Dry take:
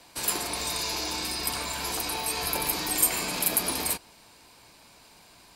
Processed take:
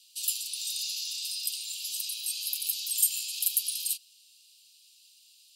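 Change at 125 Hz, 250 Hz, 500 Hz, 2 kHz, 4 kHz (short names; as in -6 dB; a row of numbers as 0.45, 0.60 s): under -40 dB, under -40 dB, under -40 dB, -13.0 dB, -1.5 dB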